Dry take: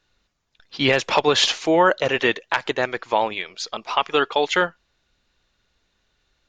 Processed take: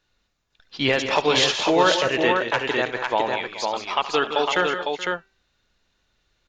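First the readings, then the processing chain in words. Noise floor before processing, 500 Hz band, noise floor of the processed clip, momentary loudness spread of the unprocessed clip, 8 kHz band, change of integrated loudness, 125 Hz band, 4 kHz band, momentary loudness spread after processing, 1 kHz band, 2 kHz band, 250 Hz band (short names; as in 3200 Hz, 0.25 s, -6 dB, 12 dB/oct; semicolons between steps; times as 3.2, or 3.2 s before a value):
-71 dBFS, -0.5 dB, -72 dBFS, 9 LU, -0.5 dB, -1.0 dB, -1.0 dB, -0.5 dB, 9 LU, -0.5 dB, -0.5 dB, -0.5 dB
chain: de-hum 385.6 Hz, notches 7; on a send: tapped delay 71/168/194/426/504 ms -15/-10/-13.5/-17.5/-4 dB; on the sum: gain -2.5 dB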